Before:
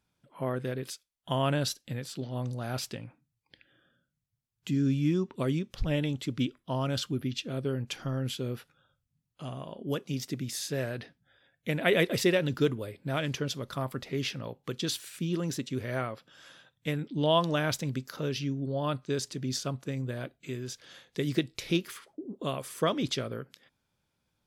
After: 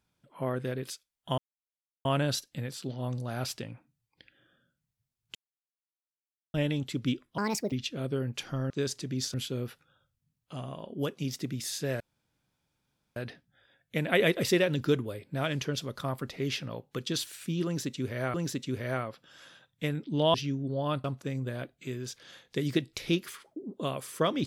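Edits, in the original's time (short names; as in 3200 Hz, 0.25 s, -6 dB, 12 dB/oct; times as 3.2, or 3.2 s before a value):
1.38 insert silence 0.67 s
4.68–5.87 mute
6.71–7.25 speed 158%
10.89 insert room tone 1.16 s
15.38–16.07 loop, 2 plays
17.38–18.32 cut
19.02–19.66 move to 8.23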